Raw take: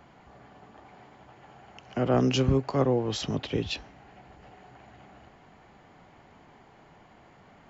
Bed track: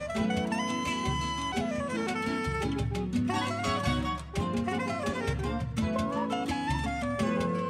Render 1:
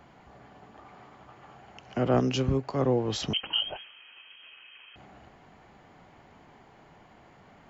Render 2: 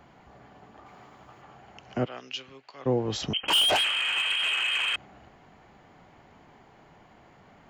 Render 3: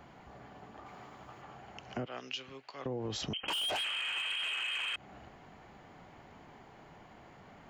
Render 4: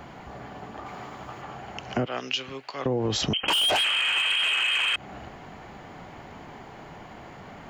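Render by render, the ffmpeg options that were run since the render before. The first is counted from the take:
ffmpeg -i in.wav -filter_complex "[0:a]asettb=1/sr,asplit=3[link_01][link_02][link_03];[link_01]atrim=end=0.794[link_04];[link_02]atrim=start=0.79:end=1.56,asetpts=PTS-STARTPTS,afade=type=in:duration=0.004:curve=qsin,afade=type=out:start_time=0.766:duration=0.004:curve=qsin,equalizer=frequency=1200:width_type=o:width=0.22:gain=9[link_05];[link_03]atrim=start=1.556[link_06];[link_04][link_05]acrossfade=duration=0.004:curve1=hsin:curve2=qsin[link_07];[link_07][link_06]acrossfade=duration=0.004:curve1=qsin:curve2=hsin,asettb=1/sr,asplit=3[link_08][link_09][link_10];[link_08]atrim=end=3.334[link_11];[link_09]atrim=start=3.33:end=4.96,asetpts=PTS-STARTPTS,afade=type=in:duration=0.004:curve=qsin,afade=type=out:start_time=1.626:duration=0.004:curve=qsin,lowpass=frequency=2800:width_type=q:width=0.5098,lowpass=frequency=2800:width_type=q:width=0.6013,lowpass=frequency=2800:width_type=q:width=0.9,lowpass=frequency=2800:width_type=q:width=2.563,afreqshift=-3300[link_12];[link_10]atrim=start=4.956[link_13];[link_11][link_12]acrossfade=duration=0.004:curve1=hsin:curve2=qsin[link_14];[link_14][link_13]acrossfade=duration=0.004:curve1=qsin:curve2=hsin,asplit=3[link_15][link_16][link_17];[link_15]atrim=end=2.202[link_18];[link_16]atrim=start=2.198:end=2.832,asetpts=PTS-STARTPTS,volume=-3dB[link_19];[link_17]atrim=start=2.828[link_20];[link_18][link_19]acrossfade=duration=0.004:curve1=hsin:curve2=hsin[link_21];[link_21][link_20]acrossfade=duration=0.004:curve1=hsin:curve2=hsin" out.wav
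ffmpeg -i in.wav -filter_complex "[0:a]asettb=1/sr,asplit=3[link_01][link_02][link_03];[link_01]atrim=end=0.864[link_04];[link_02]atrim=start=0.86:end=1.42,asetpts=PTS-STARTPTS,afade=type=in:duration=0.004:curve=qsin,afade=type=out:start_time=0.556:duration=0.004:curve=qsin,highshelf=frequency=5900:gain=8[link_05];[link_03]atrim=start=1.416[link_06];[link_04][link_05]acrossfade=duration=0.004:curve1=hsin:curve2=qsin[link_07];[link_07][link_06]acrossfade=duration=0.004:curve1=qsin:curve2=hsin,asplit=3[link_08][link_09][link_10];[link_08]afade=type=out:start_time=2.04:duration=0.02[link_11];[link_09]bandpass=frequency=3100:width_type=q:width=1.4,afade=type=in:start_time=2.04:duration=0.02,afade=type=out:start_time=2.85:duration=0.02[link_12];[link_10]afade=type=in:start_time=2.85:duration=0.02[link_13];[link_11][link_12][link_13]amix=inputs=3:normalize=0,asettb=1/sr,asplit=3[link_14][link_15][link_16];[link_14]atrim=end=3.484[link_17];[link_15]atrim=start=3.48:end=4.96,asetpts=PTS-STARTPTS,afade=type=in:duration=0.004:curve=qsin,afade=type=out:start_time=1.476:duration=0.004:curve=qsin,asplit=2[link_18][link_19];[link_19]highpass=frequency=720:poles=1,volume=34dB,asoftclip=type=tanh:threshold=-15dB[link_20];[link_18][link_20]amix=inputs=2:normalize=0,lowpass=frequency=6100:poles=1,volume=-6dB[link_21];[link_16]atrim=start=4.956[link_22];[link_17][link_21]acrossfade=duration=0.004:curve1=hsin:curve2=qsin[link_23];[link_23][link_22]acrossfade=duration=0.004:curve1=qsin:curve2=hsin" out.wav
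ffmpeg -i in.wav -af "alimiter=limit=-23.5dB:level=0:latency=1:release=68,acompressor=threshold=-36dB:ratio=3" out.wav
ffmpeg -i in.wav -af "volume=11.5dB" out.wav

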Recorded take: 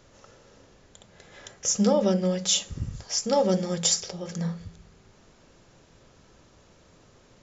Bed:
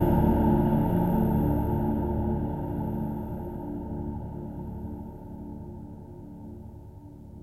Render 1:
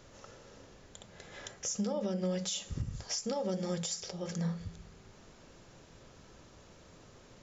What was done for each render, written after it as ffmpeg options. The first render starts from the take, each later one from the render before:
ffmpeg -i in.wav -af "acompressor=threshold=-23dB:ratio=6,alimiter=level_in=1.5dB:limit=-24dB:level=0:latency=1:release=348,volume=-1.5dB" out.wav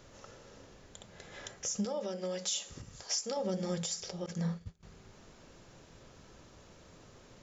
ffmpeg -i in.wav -filter_complex "[0:a]asettb=1/sr,asplit=3[link_01][link_02][link_03];[link_01]atrim=end=1.854[link_04];[link_02]atrim=start=1.85:end=3.37,asetpts=PTS-STARTPTS,afade=type=in:duration=0.004:curve=qsin,afade=type=out:start_time=1.516:duration=0.004:curve=qsin,bass=frequency=250:gain=-14,treble=frequency=4000:gain=3[link_05];[link_03]atrim=start=3.366[link_06];[link_04][link_05]acrossfade=duration=0.004:curve1=hsin:curve2=qsin[link_07];[link_07][link_06]acrossfade=duration=0.004:curve1=qsin:curve2=hsin,asettb=1/sr,asplit=3[link_08][link_09][link_10];[link_08]atrim=end=4.264[link_11];[link_09]atrim=start=4.26:end=4.83,asetpts=PTS-STARTPTS,afade=type=in:duration=0.004:curve=qsin,afade=type=out:start_time=0.566:duration=0.004:curve=qsin,agate=range=-33dB:threshold=-37dB:ratio=3:release=100:detection=peak[link_12];[link_10]atrim=start=4.826[link_13];[link_11][link_12]acrossfade=duration=0.004:curve1=hsin:curve2=qsin[link_14];[link_14][link_13]acrossfade=duration=0.004:curve1=qsin:curve2=hsin" out.wav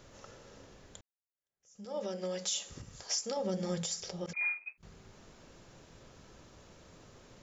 ffmpeg -i in.wav -filter_complex "[0:a]asettb=1/sr,asplit=3[link_01][link_02][link_03];[link_01]atrim=end=4.334[link_04];[link_02]atrim=start=4.33:end=4.78,asetpts=PTS-STARTPTS,afade=type=in:duration=0.004:curve=qsin,afade=type=out:start_time=0.446:duration=0.004:curve=qsin,lowpass=frequency=2200:width_type=q:width=0.5098,lowpass=frequency=2200:width_type=q:width=0.6013,lowpass=frequency=2200:width_type=q:width=0.9,lowpass=frequency=2200:width_type=q:width=2.563,afreqshift=-2600[link_05];[link_03]atrim=start=4.776[link_06];[link_04][link_05]acrossfade=duration=0.004:curve1=hsin:curve2=qsin[link_07];[link_07][link_06]acrossfade=duration=0.004:curve1=qsin:curve2=hsin,asplit=2[link_08][link_09];[link_08]atrim=end=1.01,asetpts=PTS-STARTPTS,afade=type=out:start_time=1.006:duration=0.004:curve=hsin[link_10];[link_09]atrim=start=1.01,asetpts=PTS-STARTPTS,afade=type=in:duration=0.95:curve=exp[link_11];[link_10][link_11]concat=n=2:v=0:a=1" out.wav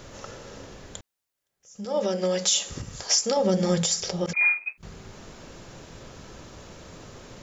ffmpeg -i in.wav -af "volume=12dB" out.wav

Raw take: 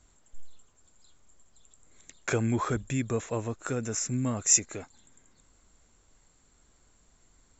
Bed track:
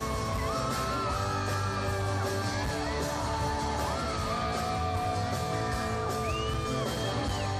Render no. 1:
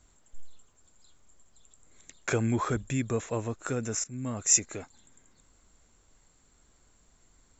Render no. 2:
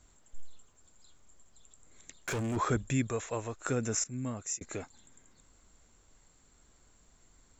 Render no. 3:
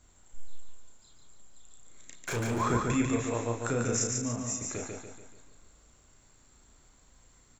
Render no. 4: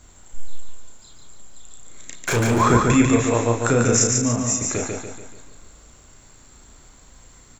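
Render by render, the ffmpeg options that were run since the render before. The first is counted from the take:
ffmpeg -i in.wav -filter_complex "[0:a]asplit=2[link_01][link_02];[link_01]atrim=end=4.04,asetpts=PTS-STARTPTS,afade=type=out:start_time=4.036:duration=0.004:curve=hsin:silence=0.125893[link_03];[link_02]atrim=start=4.04,asetpts=PTS-STARTPTS,afade=type=in:duration=0.65:curve=qsin:silence=0.125893[link_04];[link_03][link_04]concat=n=2:v=0:a=1" out.wav
ffmpeg -i in.wav -filter_complex "[0:a]asettb=1/sr,asplit=3[link_01][link_02][link_03];[link_01]atrim=end=2.144[link_04];[link_02]atrim=start=2.14:end=2.57,asetpts=PTS-STARTPTS,afade=type=in:duration=0.004:curve=qsin,afade=type=out:start_time=0.426:duration=0.004:curve=qsin,asoftclip=type=hard:threshold=-31dB[link_05];[link_03]atrim=start=2.566[link_06];[link_04][link_05]acrossfade=duration=0.004:curve1=hsin:curve2=qsin[link_07];[link_07][link_06]acrossfade=duration=0.004:curve1=qsin:curve2=hsin,asettb=1/sr,asplit=3[link_08][link_09][link_10];[link_08]atrim=end=3.074[link_11];[link_09]atrim=start=3.07:end=3.66,asetpts=PTS-STARTPTS,afade=type=in:duration=0.004:curve=qsin,afade=type=out:start_time=0.586:duration=0.004:curve=qsin,equalizer=frequency=190:width_type=o:width=2.1:gain=-9.5[link_12];[link_10]atrim=start=3.656[link_13];[link_11][link_12]acrossfade=duration=0.004:curve1=hsin:curve2=qsin[link_14];[link_14][link_13]acrossfade=duration=0.004:curve1=qsin:curve2=hsin,asplit=2[link_15][link_16];[link_15]atrim=end=4.61,asetpts=PTS-STARTPTS,afade=type=out:start_time=4.18:duration=0.43[link_17];[link_16]atrim=start=4.61,asetpts=PTS-STARTPTS,afade=type=in:duration=0.004:curve=hsin[link_18];[link_17][link_18]concat=n=2:v=0:a=1" out.wav
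ffmpeg -i in.wav -filter_complex "[0:a]asplit=2[link_01][link_02];[link_02]adelay=34,volume=-4dB[link_03];[link_01][link_03]amix=inputs=2:normalize=0,aecho=1:1:144|288|432|576|720|864:0.668|0.307|0.141|0.0651|0.0299|0.0138" out.wav
ffmpeg -i in.wav -af "volume=12dB" out.wav

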